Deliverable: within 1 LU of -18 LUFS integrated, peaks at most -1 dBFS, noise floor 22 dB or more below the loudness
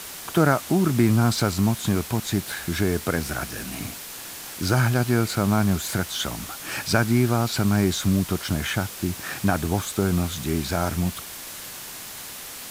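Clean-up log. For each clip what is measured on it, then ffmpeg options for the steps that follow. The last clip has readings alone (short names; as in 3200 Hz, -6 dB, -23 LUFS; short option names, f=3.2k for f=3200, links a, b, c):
noise floor -38 dBFS; noise floor target -46 dBFS; loudness -24.0 LUFS; peak -4.5 dBFS; loudness target -18.0 LUFS
-> -af "afftdn=nr=8:nf=-38"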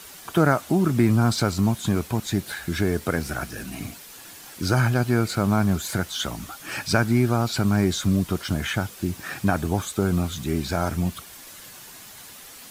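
noise floor -44 dBFS; noise floor target -46 dBFS
-> -af "afftdn=nr=6:nf=-44"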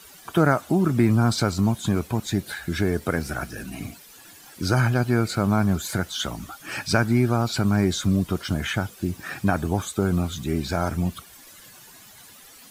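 noise floor -48 dBFS; loudness -24.0 LUFS; peak -4.5 dBFS; loudness target -18.0 LUFS
-> -af "volume=6dB,alimiter=limit=-1dB:level=0:latency=1"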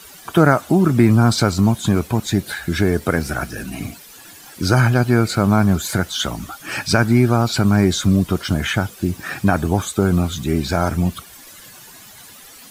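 loudness -18.0 LUFS; peak -1.0 dBFS; noise floor -42 dBFS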